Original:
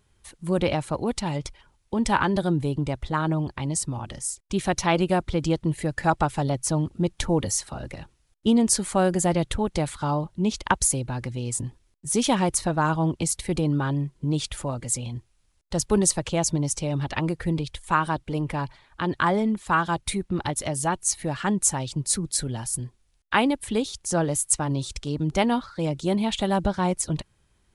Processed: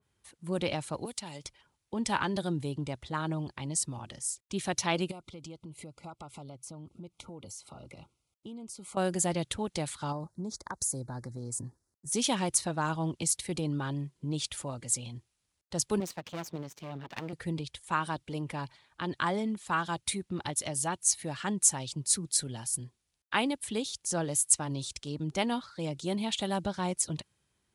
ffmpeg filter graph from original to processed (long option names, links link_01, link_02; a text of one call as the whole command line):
ffmpeg -i in.wav -filter_complex "[0:a]asettb=1/sr,asplit=3[link_01][link_02][link_03];[link_01]atrim=end=1.054[link_04];[link_02]atrim=start=1.05:end=1.45,asetpts=PTS-STARTPTS,afade=type=in:duration=0.004:curve=qsin,afade=type=out:start_time=0.396:duration=0.004:curve=qsin,acrossover=split=280|4000[link_05][link_06][link_07];[link_05]acompressor=threshold=-40dB:ratio=4[link_08];[link_06]acompressor=threshold=-35dB:ratio=4[link_09];[link_07]acompressor=threshold=-41dB:ratio=4[link_10];[link_08][link_09][link_10]amix=inputs=3:normalize=0,aemphasis=mode=production:type=cd[link_11];[link_03]atrim=start=1.446[link_12];[link_04][link_11]acrossfade=duration=0.004:curve1=hsin:curve2=qsin[link_13];[link_13][link_12]acrossfade=duration=0.004:curve1=qsin:curve2=hsin,asettb=1/sr,asplit=3[link_14][link_15][link_16];[link_14]atrim=end=5.114[link_17];[link_15]atrim=start=5.11:end=8.97,asetpts=PTS-STARTPTS,afade=type=in:duration=0.004:curve=qsin,afade=type=out:start_time=3.856:duration=0.004:curve=qsin,acompressor=threshold=-34dB:ratio=5:attack=3.2:release=140:knee=1:detection=peak,asuperstop=centerf=1700:order=20:qfactor=3[link_18];[link_16]atrim=start=8.966[link_19];[link_17][link_18]acrossfade=duration=0.004:curve1=hsin:curve2=qsin[link_20];[link_20][link_19]acrossfade=duration=0.004:curve1=qsin:curve2=hsin,asettb=1/sr,asplit=3[link_21][link_22][link_23];[link_21]atrim=end=10.124[link_24];[link_22]atrim=start=10.12:end=12.12,asetpts=PTS-STARTPTS,afade=type=in:duration=0.004:curve=qsin,afade=type=out:start_time=1.996:duration=0.004:curve=qsin,acompressor=threshold=-24dB:ratio=6:attack=3.2:release=140:knee=1:detection=peak,asuperstop=centerf=2800:order=4:qfactor=0.89[link_25];[link_23]atrim=start=12.116[link_26];[link_24][link_25]acrossfade=duration=0.004:curve1=hsin:curve2=qsin[link_27];[link_27][link_26]acrossfade=duration=0.004:curve1=qsin:curve2=hsin,asettb=1/sr,asplit=3[link_28][link_29][link_30];[link_28]atrim=end=16.004[link_31];[link_29]atrim=start=16:end=17.33,asetpts=PTS-STARTPTS,afade=type=in:duration=0.004:curve=qsin,afade=type=out:start_time=1.326:duration=0.004:curve=qsin,highpass=140,lowpass=3200,aeval=exprs='max(val(0),0)':channel_layout=same[link_32];[link_30]atrim=start=17.326[link_33];[link_31][link_32]acrossfade=duration=0.004:curve1=hsin:curve2=qsin[link_34];[link_34][link_33]acrossfade=duration=0.004:curve1=qsin:curve2=hsin,highpass=91,adynamicequalizer=threshold=0.00891:dfrequency=2400:dqfactor=0.7:tfrequency=2400:tqfactor=0.7:attack=5:release=100:ratio=0.375:range=3.5:mode=boostabove:tftype=highshelf,volume=-8.5dB" out.wav